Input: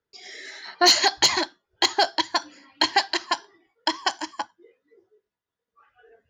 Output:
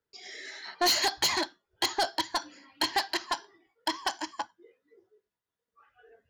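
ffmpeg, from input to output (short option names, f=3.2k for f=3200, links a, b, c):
-af "asoftclip=type=tanh:threshold=-17.5dB,volume=-3dB"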